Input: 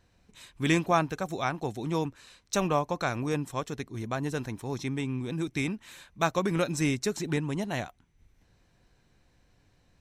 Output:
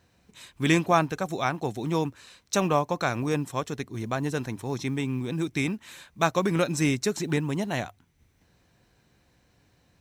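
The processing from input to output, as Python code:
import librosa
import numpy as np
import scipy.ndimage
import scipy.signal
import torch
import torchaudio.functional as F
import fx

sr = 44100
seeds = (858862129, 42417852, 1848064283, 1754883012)

y = fx.quant_companded(x, sr, bits=8)
y = scipy.signal.sosfilt(scipy.signal.butter(2, 58.0, 'highpass', fs=sr, output='sos'), y)
y = fx.hum_notches(y, sr, base_hz=50, count=2)
y = y * 10.0 ** (3.0 / 20.0)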